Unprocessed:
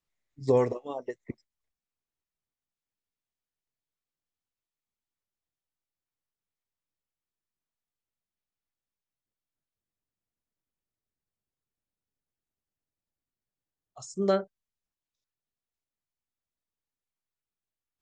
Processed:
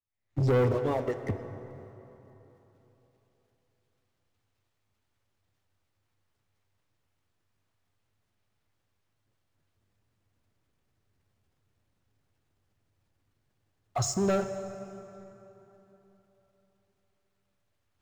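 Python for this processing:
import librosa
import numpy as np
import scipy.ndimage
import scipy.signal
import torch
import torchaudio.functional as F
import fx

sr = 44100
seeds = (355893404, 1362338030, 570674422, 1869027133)

y = fx.recorder_agc(x, sr, target_db=-20.5, rise_db_per_s=65.0, max_gain_db=30)
y = fx.lowpass(y, sr, hz=2600.0, slope=6)
y = fx.peak_eq(y, sr, hz=99.0, db=14.0, octaves=0.46)
y = fx.leveller(y, sr, passes=3)
y = fx.transient(y, sr, attack_db=-2, sustain_db=5)
y = fx.rev_plate(y, sr, seeds[0], rt60_s=3.6, hf_ratio=0.6, predelay_ms=0, drr_db=9.0)
y = F.gain(torch.from_numpy(y), -8.5).numpy()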